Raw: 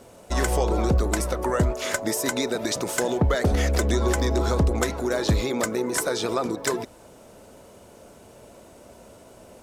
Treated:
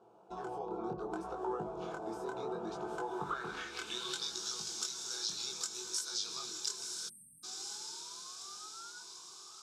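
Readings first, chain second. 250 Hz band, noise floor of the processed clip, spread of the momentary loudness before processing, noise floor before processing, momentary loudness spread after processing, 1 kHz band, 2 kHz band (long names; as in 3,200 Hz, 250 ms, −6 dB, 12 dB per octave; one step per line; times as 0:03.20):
−18.5 dB, −59 dBFS, 4 LU, −49 dBFS, 9 LU, −11.5 dB, −16.5 dB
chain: sound drawn into the spectrogram rise, 0:07.15–0:09.02, 640–1,500 Hz −36 dBFS
feedback delay with all-pass diffusion 1,001 ms, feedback 58%, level −6.5 dB
band-pass filter sweep 690 Hz → 5,500 Hz, 0:02.93–0:04.40
downward compressor 4 to 1, threshold −35 dBFS, peak gain reduction 10 dB
phaser with its sweep stopped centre 390 Hz, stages 8
chorus effect 0.67 Hz, delay 18.5 ms, depth 8 ms
automatic gain control gain up to 4 dB
flat-topped bell 680 Hz −8.5 dB
time-frequency box erased 0:07.09–0:07.44, 300–8,300 Hz
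high-shelf EQ 4,700 Hz −9.5 dB
mains-hum notches 50/100/150/200/250/300/350 Hz
level +8 dB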